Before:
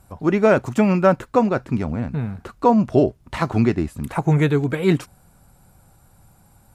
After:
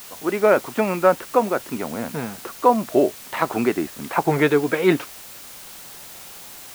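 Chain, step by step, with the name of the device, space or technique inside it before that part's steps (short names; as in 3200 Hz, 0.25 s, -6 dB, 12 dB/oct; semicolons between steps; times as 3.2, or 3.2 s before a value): dictaphone (BPF 350–3500 Hz; AGC gain up to 10 dB; wow and flutter; white noise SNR 18 dB); gain -1.5 dB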